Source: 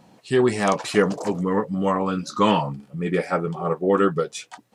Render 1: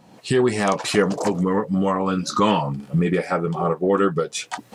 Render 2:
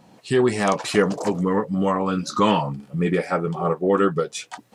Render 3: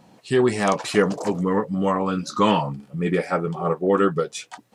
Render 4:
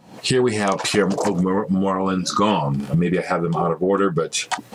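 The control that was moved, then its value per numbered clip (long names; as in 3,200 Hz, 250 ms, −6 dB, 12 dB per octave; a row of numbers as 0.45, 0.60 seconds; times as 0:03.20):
camcorder AGC, rising by: 35, 14, 5.3, 87 dB per second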